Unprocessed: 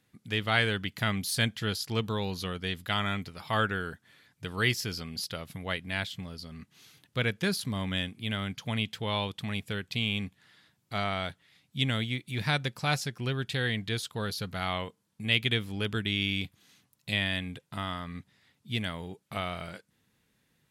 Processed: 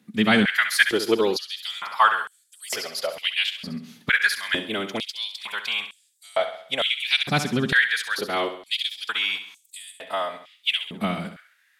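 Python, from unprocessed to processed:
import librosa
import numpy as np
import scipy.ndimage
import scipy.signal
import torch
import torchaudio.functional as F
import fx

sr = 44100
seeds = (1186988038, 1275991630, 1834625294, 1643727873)

y = fx.echo_feedback(x, sr, ms=117, feedback_pct=48, wet_db=-10.0)
y = fx.stretch_vocoder(y, sr, factor=0.57)
y = fx.filter_held_highpass(y, sr, hz=2.2, low_hz=210.0, high_hz=7900.0)
y = y * 10.0 ** (7.0 / 20.0)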